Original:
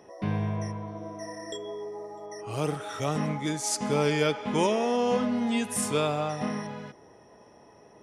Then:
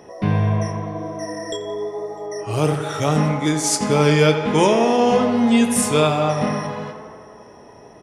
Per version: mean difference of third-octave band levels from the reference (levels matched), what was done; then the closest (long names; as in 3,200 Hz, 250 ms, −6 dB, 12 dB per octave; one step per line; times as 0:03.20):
2.0 dB: low-shelf EQ 89 Hz +5.5 dB
double-tracking delay 26 ms −11 dB
tape delay 86 ms, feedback 82%, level −10 dB, low-pass 3,700 Hz
level +8.5 dB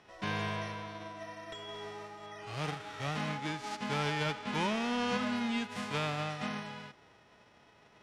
5.5 dB: spectral envelope flattened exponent 0.3
soft clipping −16.5 dBFS, distortion −19 dB
low-pass filter 3,100 Hz 12 dB per octave
level −5 dB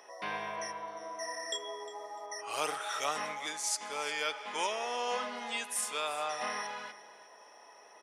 10.0 dB: high-pass filter 940 Hz 12 dB per octave
speech leveller within 5 dB 0.5 s
on a send: single-tap delay 355 ms −16.5 dB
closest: first